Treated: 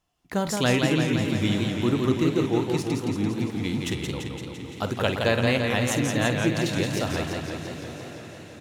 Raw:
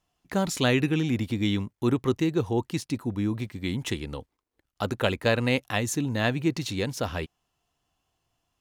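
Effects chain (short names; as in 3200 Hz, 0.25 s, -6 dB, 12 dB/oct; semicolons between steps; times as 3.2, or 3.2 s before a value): doubler 49 ms -12.5 dB; diffused feedback echo 0.966 s, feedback 46%, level -14 dB; warbling echo 0.17 s, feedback 69%, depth 126 cents, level -4 dB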